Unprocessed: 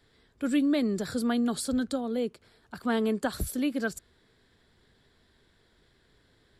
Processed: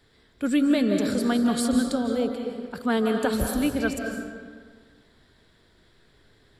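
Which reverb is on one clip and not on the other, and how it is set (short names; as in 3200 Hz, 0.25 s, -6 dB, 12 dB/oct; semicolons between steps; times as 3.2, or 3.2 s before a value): digital reverb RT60 1.7 s, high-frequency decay 0.65×, pre-delay 0.12 s, DRR 3 dB; gain +3.5 dB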